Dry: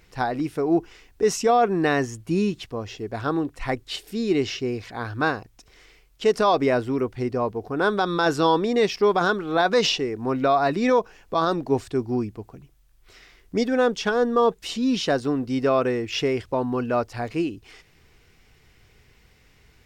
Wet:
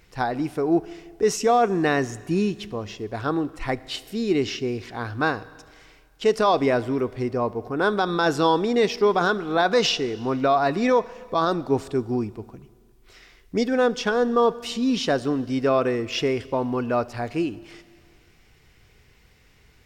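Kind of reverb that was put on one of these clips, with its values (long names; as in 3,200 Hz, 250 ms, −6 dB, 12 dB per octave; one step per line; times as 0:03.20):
four-comb reverb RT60 1.9 s, combs from 26 ms, DRR 18 dB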